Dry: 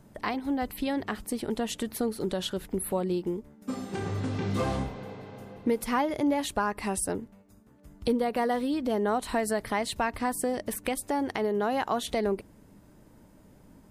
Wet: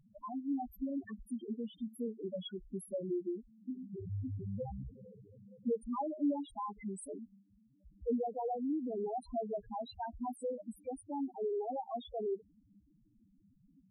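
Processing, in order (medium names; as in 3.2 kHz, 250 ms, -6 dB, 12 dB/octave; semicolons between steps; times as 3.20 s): loudest bins only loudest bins 2; trim -5 dB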